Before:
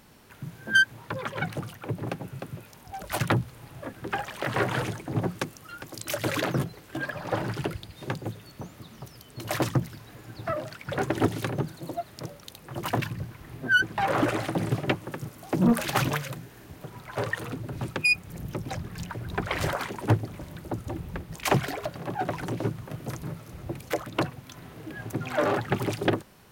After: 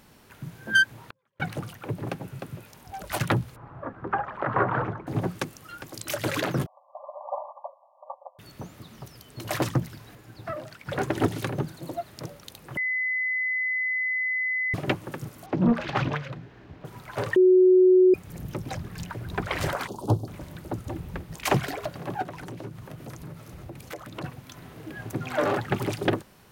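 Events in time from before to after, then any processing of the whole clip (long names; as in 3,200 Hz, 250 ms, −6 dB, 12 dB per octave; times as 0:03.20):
0:00.98–0:01.40: gate with flip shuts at −31 dBFS, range −42 dB
0:03.56–0:05.07: low-pass with resonance 1,200 Hz, resonance Q 2.3
0:06.66–0:08.39: linear-phase brick-wall band-pass 530–1,200 Hz
0:10.15–0:10.86: clip gain −4 dB
0:12.77–0:14.74: beep over 2,020 Hz −24 dBFS
0:15.46–0:16.85: high-frequency loss of the air 220 metres
0:17.36–0:18.14: beep over 369 Hz −13 dBFS
0:19.87–0:20.28: Chebyshev band-stop filter 950–4,100 Hz
0:22.22–0:24.24: downward compressor 2.5 to 1, threshold −38 dBFS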